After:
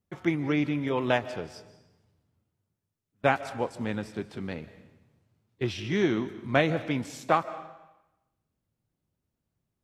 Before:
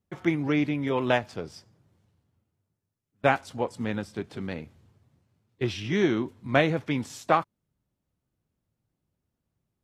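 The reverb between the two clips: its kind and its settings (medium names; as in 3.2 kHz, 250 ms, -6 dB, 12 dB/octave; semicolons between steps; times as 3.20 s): algorithmic reverb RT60 0.98 s, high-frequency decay 0.95×, pre-delay 105 ms, DRR 14.5 dB; trim -1.5 dB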